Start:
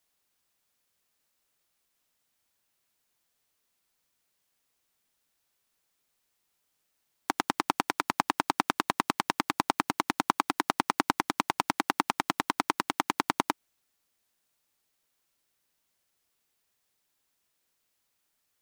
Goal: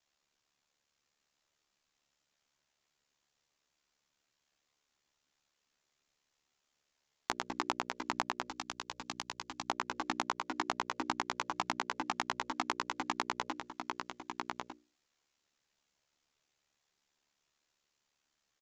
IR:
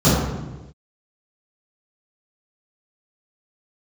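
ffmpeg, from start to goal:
-filter_complex "[0:a]aeval=exprs='val(0)*sin(2*PI*36*n/s)':channel_layout=same,asoftclip=type=hard:threshold=-7.5dB,asplit=2[link_01][link_02];[link_02]aecho=0:1:1198:0.282[link_03];[link_01][link_03]amix=inputs=2:normalize=0,aresample=16000,aresample=44100,bandreject=frequency=60:width_type=h:width=6,bandreject=frequency=120:width_type=h:width=6,bandreject=frequency=180:width_type=h:width=6,bandreject=frequency=240:width_type=h:width=6,bandreject=frequency=300:width_type=h:width=6,bandreject=frequency=360:width_type=h:width=6,bandreject=frequency=420:width_type=h:width=6,bandreject=frequency=480:width_type=h:width=6,bandreject=frequency=540:width_type=h:width=6,bandreject=frequency=600:width_type=h:width=6,acompressor=threshold=-31dB:ratio=12,asplit=2[link_04][link_05];[link_05]adelay=16,volume=-5.5dB[link_06];[link_04][link_06]amix=inputs=2:normalize=0,asettb=1/sr,asplit=3[link_07][link_08][link_09];[link_07]atrim=end=8.484[link_10];[link_08]atrim=start=8.48:end=9.7,asetpts=PTS-STARTPTS,afade=type=in:duration=0.004:curve=qsin,afade=type=out:start_time=1.216:duration=0.004:curve=qsin,acrossover=split=140|3000[link_11][link_12][link_13];[link_12]acompressor=threshold=-57dB:ratio=1.5[link_14];[link_11][link_14][link_13]amix=inputs=3:normalize=0[link_15];[link_09]atrim=start=9.696[link_16];[link_10][link_15]acrossfade=duration=0.004:curve1=hsin:curve2=qsin[link_17];[link_17][link_16]acrossfade=duration=0.004:curve1=qsin:curve2=hsin,volume=1dB"

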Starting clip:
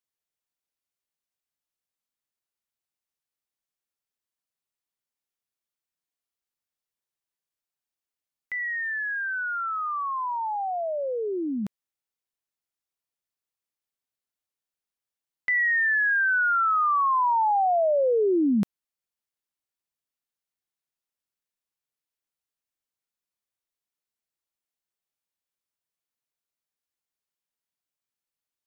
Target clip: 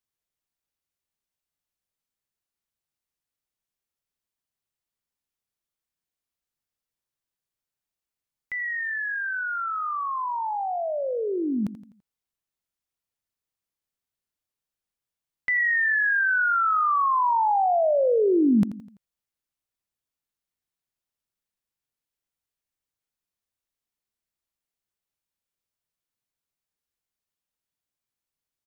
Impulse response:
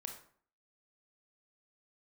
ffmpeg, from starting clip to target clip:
-filter_complex "[0:a]lowshelf=frequency=180:gain=8.5,asplit=2[link_01][link_02];[link_02]aecho=0:1:84|168|252|336:0.2|0.0878|0.0386|0.017[link_03];[link_01][link_03]amix=inputs=2:normalize=0"

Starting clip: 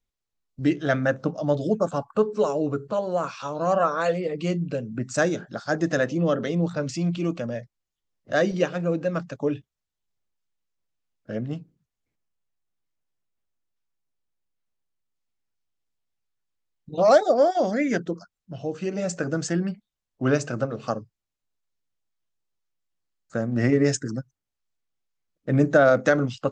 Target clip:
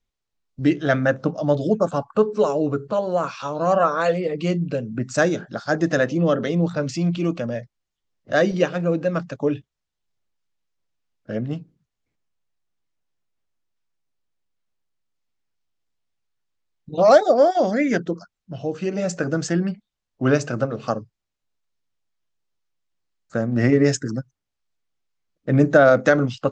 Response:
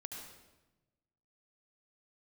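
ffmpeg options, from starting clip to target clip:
-af "lowpass=7100,volume=3.5dB"

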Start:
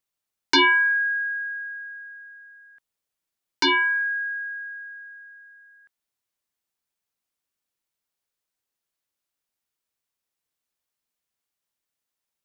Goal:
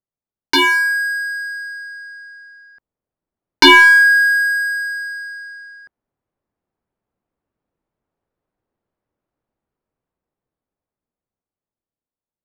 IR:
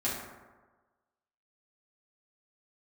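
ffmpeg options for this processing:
-filter_complex "[0:a]dynaudnorm=framelen=630:gausssize=9:maxgain=16dB,asplit=2[link_01][link_02];[link_02]aeval=exprs='clip(val(0),-1,0.282)':channel_layout=same,volume=-7.5dB[link_03];[link_01][link_03]amix=inputs=2:normalize=0,adynamicsmooth=sensitivity=5.5:basefreq=760"

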